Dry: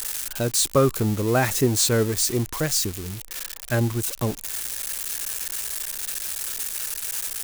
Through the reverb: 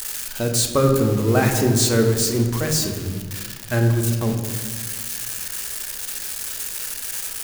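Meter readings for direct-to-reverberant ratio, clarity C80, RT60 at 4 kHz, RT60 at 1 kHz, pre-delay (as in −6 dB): 2.5 dB, 7.5 dB, 1.2 s, 1.5 s, 3 ms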